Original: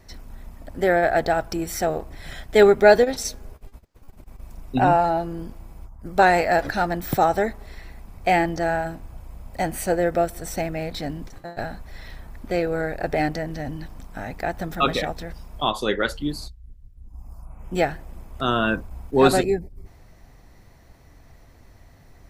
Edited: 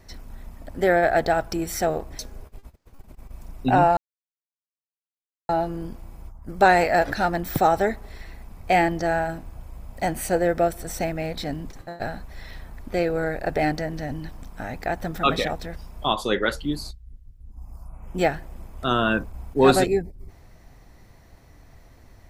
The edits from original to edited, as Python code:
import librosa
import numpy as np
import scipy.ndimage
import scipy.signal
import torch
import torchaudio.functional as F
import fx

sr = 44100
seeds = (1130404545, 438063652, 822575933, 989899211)

y = fx.edit(x, sr, fx.cut(start_s=2.19, length_s=1.09),
    fx.insert_silence(at_s=5.06, length_s=1.52), tone=tone)